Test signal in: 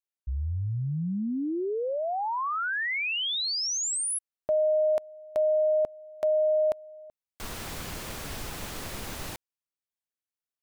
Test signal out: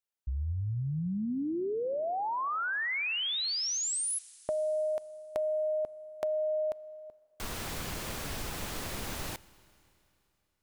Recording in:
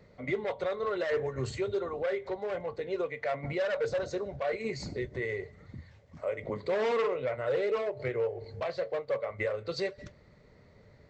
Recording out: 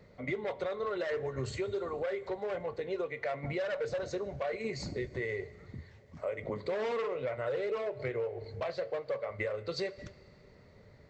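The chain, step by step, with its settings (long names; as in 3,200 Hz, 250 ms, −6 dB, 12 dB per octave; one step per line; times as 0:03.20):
downward compressor 4 to 1, threshold −31 dBFS
four-comb reverb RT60 2.9 s, combs from 26 ms, DRR 19.5 dB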